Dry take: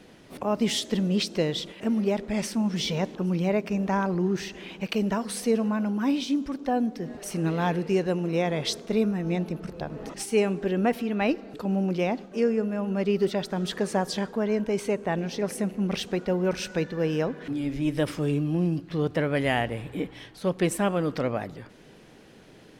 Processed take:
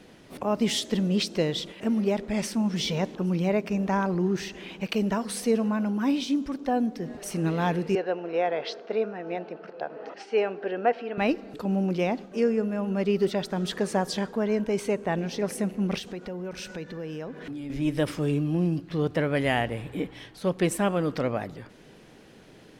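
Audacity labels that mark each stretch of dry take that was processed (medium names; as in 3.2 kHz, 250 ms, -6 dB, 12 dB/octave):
7.950000	11.180000	cabinet simulation 450–4100 Hz, peaks and dips at 470 Hz +4 dB, 710 Hz +5 dB, 1.1 kHz -3 dB, 1.5 kHz +4 dB, 2.2 kHz -3 dB, 3.6 kHz -8 dB
15.980000	17.700000	compression 3:1, threshold -35 dBFS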